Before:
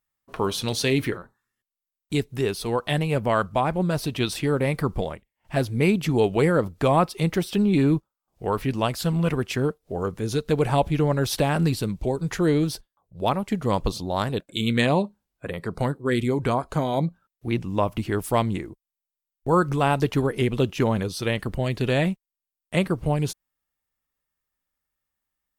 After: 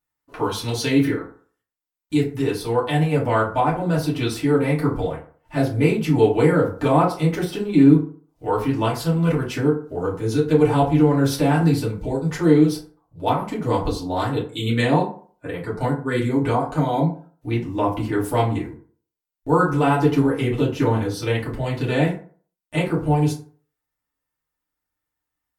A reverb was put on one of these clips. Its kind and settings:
feedback delay network reverb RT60 0.45 s, low-frequency decay 0.9×, high-frequency decay 0.5×, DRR −7 dB
level −6 dB

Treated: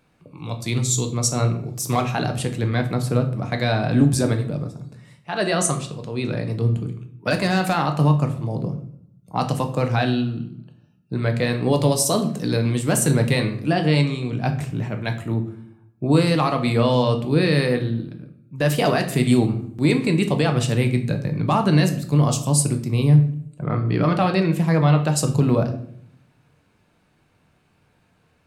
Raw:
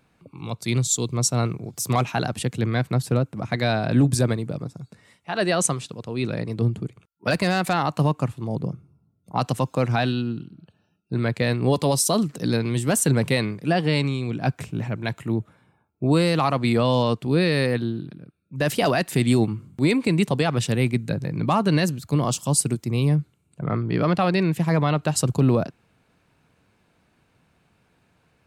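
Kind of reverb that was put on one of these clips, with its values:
rectangular room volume 98 cubic metres, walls mixed, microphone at 0.45 metres

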